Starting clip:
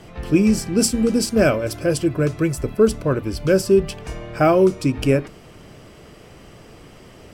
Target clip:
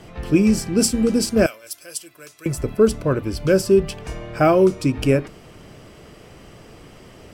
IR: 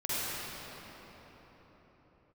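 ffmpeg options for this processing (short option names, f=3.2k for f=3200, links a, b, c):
-filter_complex "[0:a]asettb=1/sr,asplit=3[a][b][c];[a]atrim=end=1.464[d];[b]atrim=start=1.46:end=2.46,asetpts=PTS-STARTPTS,afade=t=in:d=0.004:c=qsin,afade=t=out:st=0.996:d=0.004:c=qsin,aderivative[e];[c]atrim=start=2.456[f];[d][e]acrossfade=d=0.004:c1=hsin:c2=qsin[g];[g][f]acrossfade=d=0.004:c1=qsin:c2=hsin"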